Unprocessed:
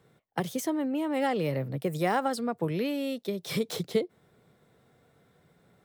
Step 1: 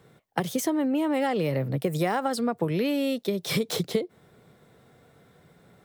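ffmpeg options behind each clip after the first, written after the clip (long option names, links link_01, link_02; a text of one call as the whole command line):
ffmpeg -i in.wav -af "acompressor=threshold=-28dB:ratio=6,volume=6.5dB" out.wav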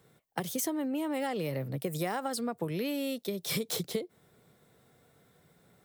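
ffmpeg -i in.wav -af "highshelf=frequency=5700:gain=10,volume=-7.5dB" out.wav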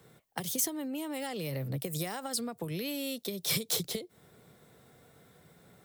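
ffmpeg -i in.wav -filter_complex "[0:a]acrossover=split=120|3000[link_01][link_02][link_03];[link_02]acompressor=threshold=-40dB:ratio=6[link_04];[link_01][link_04][link_03]amix=inputs=3:normalize=0,volume=4.5dB" out.wav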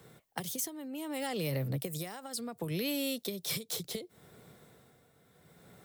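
ffmpeg -i in.wav -af "tremolo=f=0.68:d=0.65,volume=2.5dB" out.wav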